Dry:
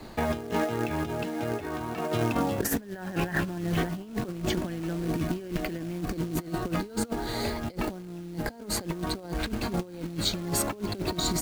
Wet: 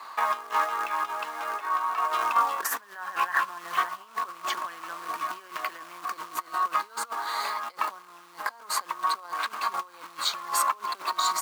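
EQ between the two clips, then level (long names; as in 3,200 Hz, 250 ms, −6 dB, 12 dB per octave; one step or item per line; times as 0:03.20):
high-pass with resonance 1,100 Hz, resonance Q 8.4
0.0 dB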